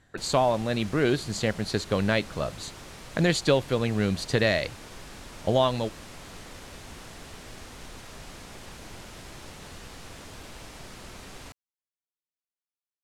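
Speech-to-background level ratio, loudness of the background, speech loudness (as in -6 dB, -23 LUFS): 17.5 dB, -44.0 LUFS, -26.5 LUFS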